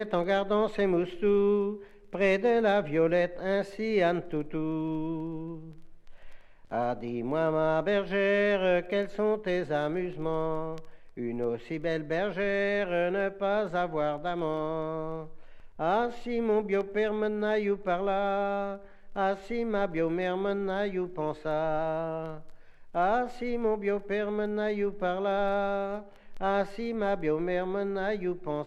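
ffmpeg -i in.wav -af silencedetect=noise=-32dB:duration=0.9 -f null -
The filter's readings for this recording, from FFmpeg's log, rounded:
silence_start: 5.55
silence_end: 6.72 | silence_duration: 1.17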